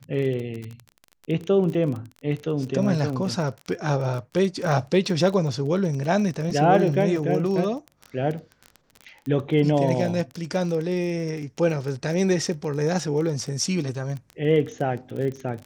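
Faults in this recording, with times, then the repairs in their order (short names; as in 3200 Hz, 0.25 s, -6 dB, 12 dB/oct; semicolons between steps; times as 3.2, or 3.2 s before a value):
crackle 25/s -29 dBFS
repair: de-click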